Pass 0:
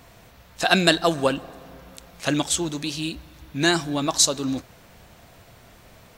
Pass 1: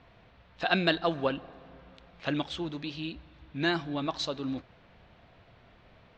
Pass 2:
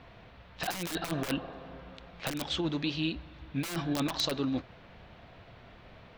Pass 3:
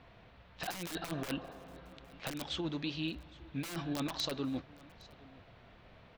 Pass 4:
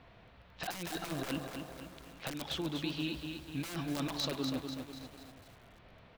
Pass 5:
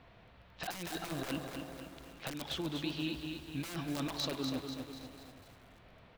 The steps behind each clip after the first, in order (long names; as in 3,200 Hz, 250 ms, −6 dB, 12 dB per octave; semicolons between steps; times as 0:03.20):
low-pass filter 3,800 Hz 24 dB per octave; level −7.5 dB
wrap-around overflow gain 22.5 dB; compressor whose output falls as the input rises −33 dBFS, ratio −0.5; level +2.5 dB
single-tap delay 813 ms −22.5 dB; level −5.5 dB
feedback echo at a low word length 245 ms, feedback 55%, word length 9 bits, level −5.5 dB
convolution reverb RT60 1.6 s, pre-delay 194 ms, DRR 13 dB; level −1 dB